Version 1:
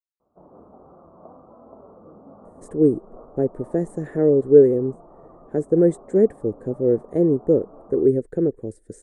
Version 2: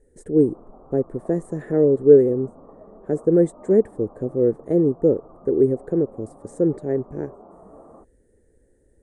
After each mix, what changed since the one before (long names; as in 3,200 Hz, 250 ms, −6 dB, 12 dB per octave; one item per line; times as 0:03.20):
speech: entry −2.45 s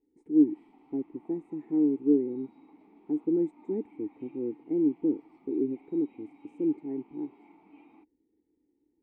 background: remove elliptic low-pass filter 1,200 Hz, stop band 40 dB
master: add formant filter u